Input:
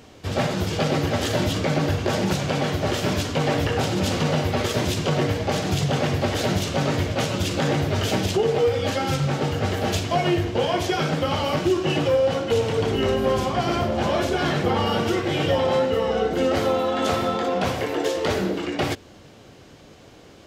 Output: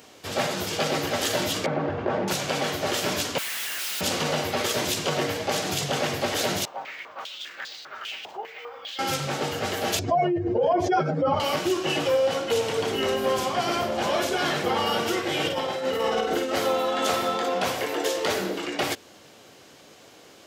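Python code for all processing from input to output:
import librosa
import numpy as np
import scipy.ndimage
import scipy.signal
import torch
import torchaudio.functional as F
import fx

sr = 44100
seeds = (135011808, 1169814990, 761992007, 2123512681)

y = fx.chain(x, sr, fx.lowpass(hz=1300.0, slope=12),
    fx.env_flatten(amount_pct=50), at=(1.66, 2.28))
y = fx.chain(y, sr, fx.cheby2_highpass(hz=470.0, order=4, stop_db=60),
    fx.schmitt(flips_db=-44.0), at=(3.38, 4.01))
y = fx.chain(y, sr, fx.resample_bad(factor=2, down='filtered', up='zero_stuff'),
    fx.filter_held_bandpass(hz=5.0, low_hz=860.0, high_hz=4300.0), at=(6.65, 8.99))
y = fx.chain(y, sr, fx.spec_expand(power=1.9),
    fx.peak_eq(hz=3100.0, db=-11.5, octaves=0.58),
    fx.env_flatten(amount_pct=100), at=(9.99, 11.4))
y = fx.chain(y, sr, fx.over_compress(threshold_db=-23.0, ratio=-0.5),
    fx.doubler(ms=49.0, db=-5), at=(15.45, 16.54))
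y = fx.highpass(y, sr, hz=470.0, slope=6)
y = fx.high_shelf(y, sr, hz=7800.0, db=9.0)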